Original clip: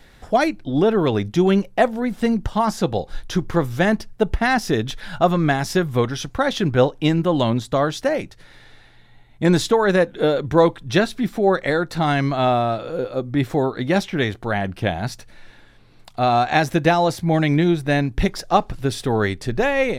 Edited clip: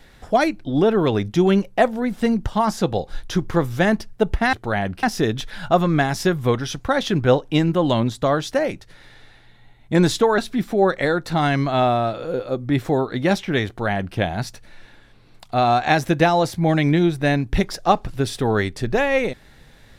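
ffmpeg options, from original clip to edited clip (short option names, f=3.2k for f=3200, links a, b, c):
-filter_complex "[0:a]asplit=4[a][b][c][d];[a]atrim=end=4.532[e];[b]atrim=start=14.318:end=14.822[f];[c]atrim=start=4.528:end=9.882[g];[d]atrim=start=11.028[h];[e][f]acrossfade=d=0.004:c1=hsin:c2=hsin[i];[i][g]acrossfade=d=0.004:c1=hsin:c2=hsin[j];[j][h]acrossfade=d=0.004:c1=hsin:c2=hsin"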